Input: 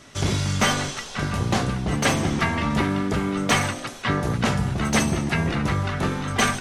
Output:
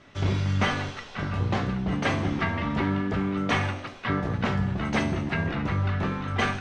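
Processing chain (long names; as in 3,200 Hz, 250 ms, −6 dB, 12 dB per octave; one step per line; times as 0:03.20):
low-pass filter 3,200 Hz 12 dB per octave
tuned comb filter 95 Hz, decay 0.49 s, harmonics all, mix 70%
level +3.5 dB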